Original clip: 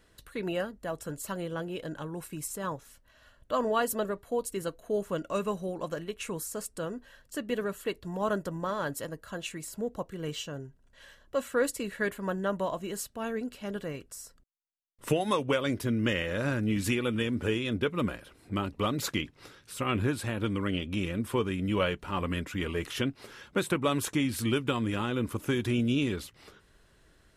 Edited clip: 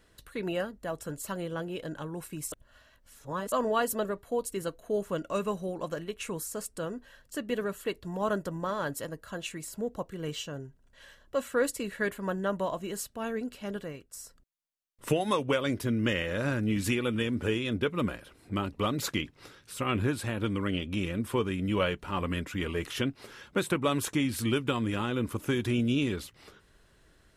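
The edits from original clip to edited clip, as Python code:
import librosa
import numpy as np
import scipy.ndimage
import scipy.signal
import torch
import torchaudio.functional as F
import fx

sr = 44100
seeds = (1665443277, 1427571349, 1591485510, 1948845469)

y = fx.edit(x, sr, fx.reverse_span(start_s=2.52, length_s=1.0),
    fx.fade_out_to(start_s=13.72, length_s=0.41, floor_db=-10.5), tone=tone)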